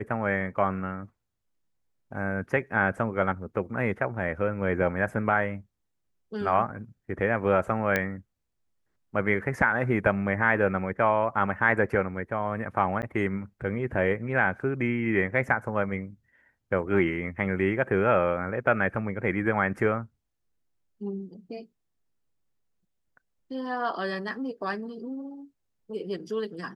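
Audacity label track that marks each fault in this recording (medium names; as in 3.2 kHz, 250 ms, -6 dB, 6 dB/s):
7.960000	7.960000	pop -11 dBFS
13.020000	13.030000	dropout 9.6 ms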